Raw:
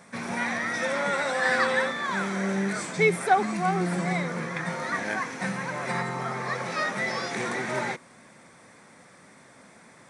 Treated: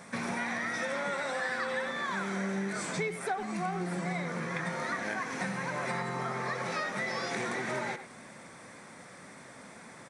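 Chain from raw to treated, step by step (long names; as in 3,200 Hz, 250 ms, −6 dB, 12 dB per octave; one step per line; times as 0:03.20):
downward compressor 6 to 1, threshold −34 dBFS, peak gain reduction 17.5 dB
far-end echo of a speakerphone 100 ms, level −10 dB
level +2.5 dB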